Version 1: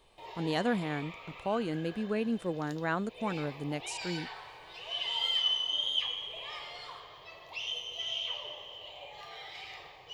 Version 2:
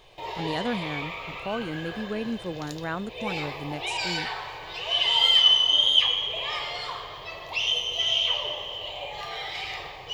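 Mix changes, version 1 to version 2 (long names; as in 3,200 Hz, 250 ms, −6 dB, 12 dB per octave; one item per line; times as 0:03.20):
background +11.5 dB
master: add low-shelf EQ 89 Hz +7 dB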